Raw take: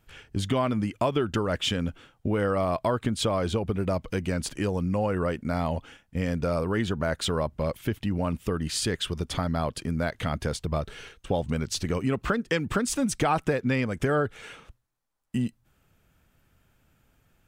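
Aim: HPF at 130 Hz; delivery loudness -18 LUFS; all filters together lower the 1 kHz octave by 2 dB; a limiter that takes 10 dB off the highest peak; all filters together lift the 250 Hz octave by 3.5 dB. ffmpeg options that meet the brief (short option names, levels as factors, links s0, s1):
-af "highpass=130,equalizer=f=250:t=o:g=5,equalizer=f=1000:t=o:g=-3,volume=4.47,alimiter=limit=0.447:level=0:latency=1"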